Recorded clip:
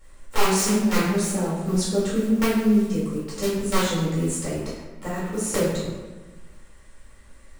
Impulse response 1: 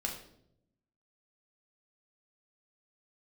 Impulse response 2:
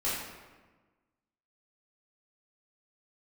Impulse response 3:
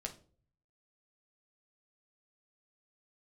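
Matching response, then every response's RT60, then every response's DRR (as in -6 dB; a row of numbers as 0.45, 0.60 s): 2; 0.75, 1.3, 0.45 s; -0.5, -9.5, 2.5 dB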